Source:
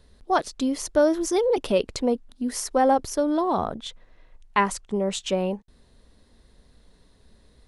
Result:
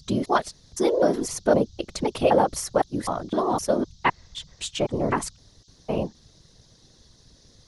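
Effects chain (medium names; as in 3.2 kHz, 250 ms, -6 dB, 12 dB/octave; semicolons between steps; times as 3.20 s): slices played last to first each 256 ms, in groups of 3; band noise 3.5–6.4 kHz -60 dBFS; whisper effect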